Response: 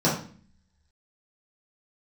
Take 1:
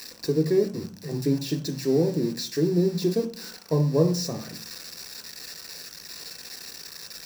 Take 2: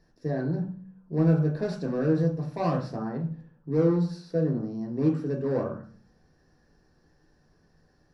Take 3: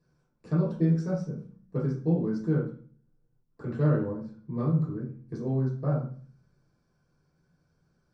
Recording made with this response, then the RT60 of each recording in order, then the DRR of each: 3; 0.45, 0.45, 0.45 seconds; 3.5, −1.0, −8.5 decibels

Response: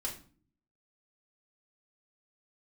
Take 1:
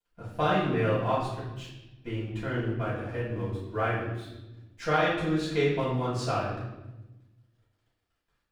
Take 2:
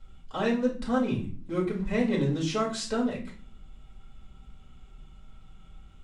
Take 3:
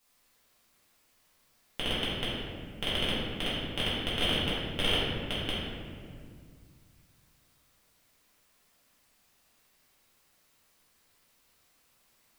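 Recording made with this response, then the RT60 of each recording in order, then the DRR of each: 2; 1.0, 0.45, 2.0 seconds; −10.0, −3.0, −10.0 decibels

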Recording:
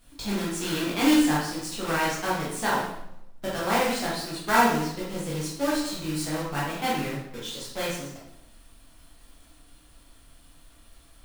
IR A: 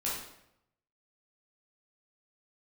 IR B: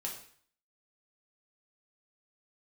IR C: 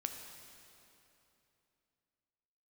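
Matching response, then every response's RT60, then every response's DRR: A; 0.80, 0.55, 3.0 seconds; −7.5, −2.0, 4.5 decibels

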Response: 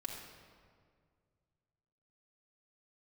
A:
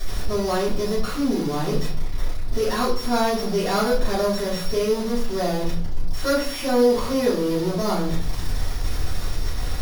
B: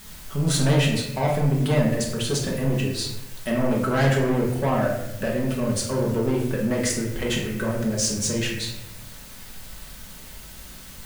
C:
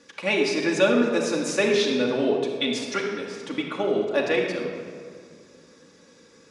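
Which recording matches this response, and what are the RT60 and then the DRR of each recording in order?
C; 0.55, 0.95, 2.0 seconds; −11.5, −3.0, −2.0 decibels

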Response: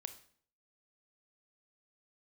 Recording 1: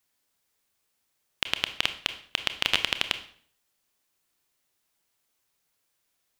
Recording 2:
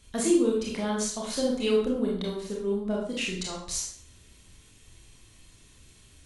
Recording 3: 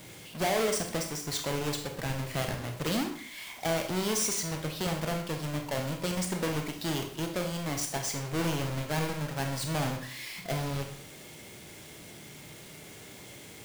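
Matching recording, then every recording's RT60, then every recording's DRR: 1; 0.55, 0.55, 0.55 seconds; 9.0, −3.5, 3.5 decibels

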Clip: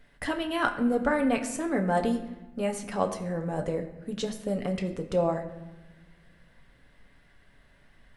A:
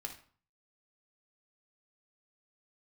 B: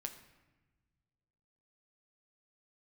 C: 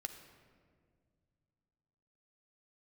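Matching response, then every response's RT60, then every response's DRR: B; 0.45, 1.2, 2.0 seconds; 3.0, 4.0, 7.0 decibels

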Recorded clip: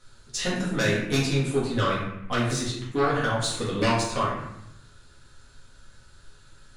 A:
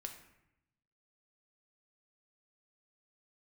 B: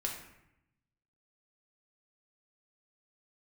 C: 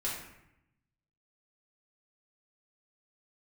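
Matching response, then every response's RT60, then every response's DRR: C; 0.80, 0.80, 0.80 seconds; 3.5, −1.0, −7.0 decibels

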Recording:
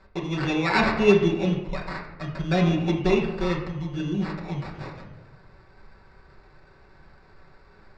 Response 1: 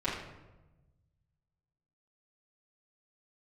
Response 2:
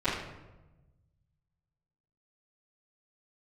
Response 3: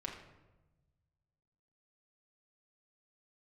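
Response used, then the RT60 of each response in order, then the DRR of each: 3; 1.1, 1.1, 1.1 seconds; −11.0, −17.5, −2.5 decibels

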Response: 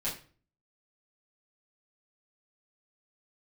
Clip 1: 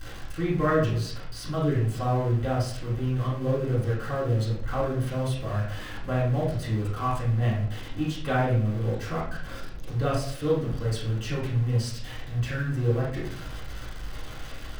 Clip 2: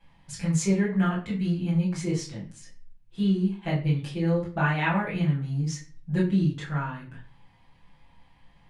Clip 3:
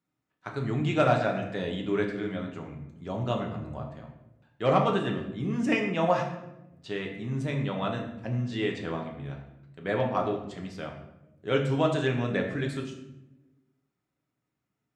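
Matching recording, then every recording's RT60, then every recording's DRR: 2; 0.60, 0.40, 0.95 seconds; −8.5, −8.5, 1.0 decibels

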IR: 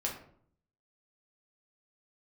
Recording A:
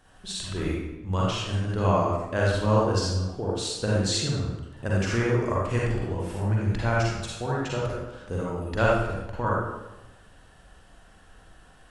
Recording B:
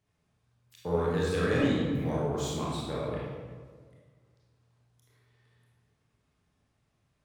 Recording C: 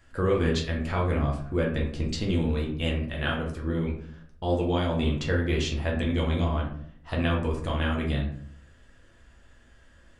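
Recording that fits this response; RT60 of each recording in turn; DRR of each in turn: C; 1.0, 1.6, 0.60 seconds; −5.5, −6.5, −2.0 decibels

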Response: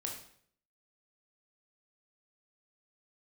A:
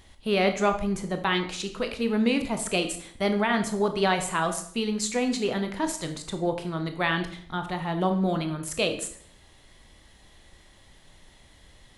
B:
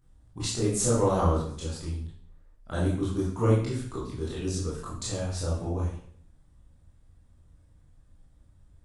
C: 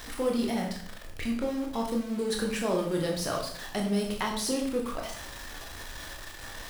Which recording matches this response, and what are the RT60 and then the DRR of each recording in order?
C; 0.60, 0.60, 0.60 seconds; 6.0, −7.5, 0.0 decibels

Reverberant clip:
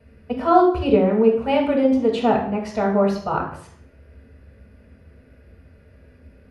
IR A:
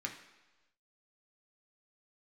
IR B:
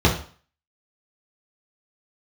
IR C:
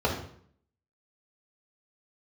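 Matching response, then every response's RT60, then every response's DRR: C; 1.1, 0.45, 0.60 seconds; 0.5, −4.5, −4.0 decibels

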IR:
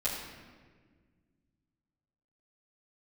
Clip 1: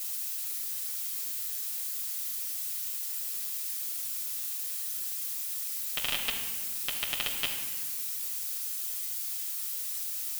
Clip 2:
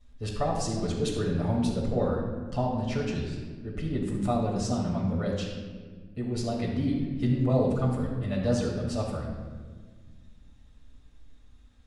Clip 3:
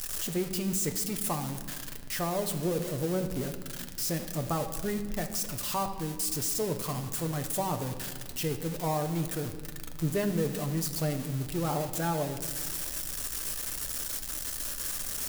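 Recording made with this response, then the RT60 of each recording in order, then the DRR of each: 2; 1.6, 1.6, 1.7 seconds; −3.0, −12.0, 5.0 decibels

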